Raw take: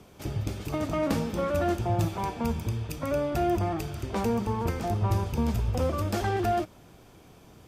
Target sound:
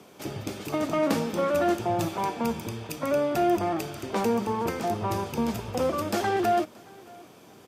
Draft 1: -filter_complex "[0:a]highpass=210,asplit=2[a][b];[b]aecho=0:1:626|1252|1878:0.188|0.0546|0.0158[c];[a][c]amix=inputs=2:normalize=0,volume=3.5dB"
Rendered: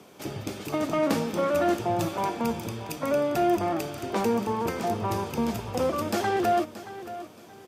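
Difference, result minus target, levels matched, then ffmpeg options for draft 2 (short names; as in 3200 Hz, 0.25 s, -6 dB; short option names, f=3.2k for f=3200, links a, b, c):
echo-to-direct +11 dB
-filter_complex "[0:a]highpass=210,asplit=2[a][b];[b]aecho=0:1:626|1252:0.0531|0.0154[c];[a][c]amix=inputs=2:normalize=0,volume=3.5dB"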